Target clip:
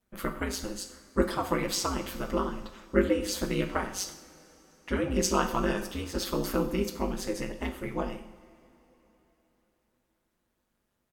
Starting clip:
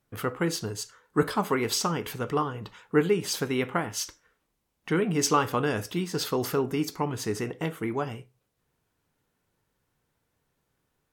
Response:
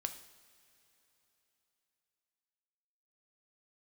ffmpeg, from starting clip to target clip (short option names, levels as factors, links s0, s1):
-filter_complex "[0:a]aecho=1:1:7.2:0.98,aeval=exprs='val(0)*sin(2*PI*97*n/s)':c=same[s0];[1:a]atrim=start_sample=2205[s1];[s0][s1]afir=irnorm=-1:irlink=0,volume=0.794"